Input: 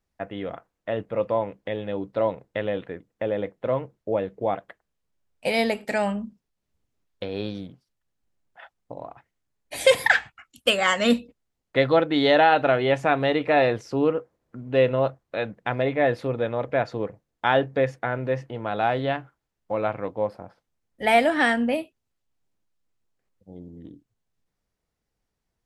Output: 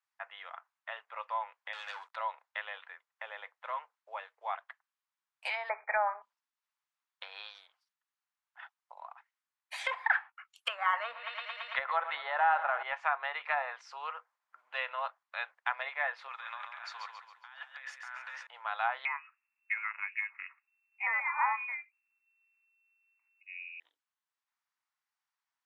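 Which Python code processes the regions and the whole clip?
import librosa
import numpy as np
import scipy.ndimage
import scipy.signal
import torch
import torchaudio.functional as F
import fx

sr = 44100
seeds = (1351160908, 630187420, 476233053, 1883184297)

y = fx.chain(x, sr, fx.highpass(hz=1000.0, slope=6),
    fx.leveller(passes=3), at=(1.73, 2.16))
y = fx.chain(y, sr, fx.halfwave_gain(db=-3.0),
    fx.brickwall_lowpass(high_hz=2500.0),
    fx.peak_eq(hz=470.0, db=13.0, octaves=2.4), at=(5.69, 6.22))
y = fx.chain(y, sr, fx.peak_eq(hz=7100.0, db=-11.5, octaves=0.29),
    fx.echo_wet_lowpass(ms=112, feedback_pct=83, hz=3200.0, wet_db=-18.5),
    fx.env_flatten(amount_pct=50), at=(10.93, 12.83))
y = fx.chain(y, sr, fx.highpass(hz=1200.0, slope=12),
    fx.over_compress(threshold_db=-41.0, ratio=-1.0),
    fx.echo_feedback(ms=137, feedback_pct=42, wet_db=-6), at=(16.28, 18.47))
y = fx.chain(y, sr, fx.clip_hard(threshold_db=-15.5),
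    fx.freq_invert(carrier_hz=2700), at=(19.05, 23.8))
y = scipy.signal.sosfilt(scipy.signal.butter(6, 950.0, 'highpass', fs=sr, output='sos'), y)
y = fx.env_lowpass_down(y, sr, base_hz=1200.0, full_db=-23.5)
y = fx.tilt_eq(y, sr, slope=-3.0)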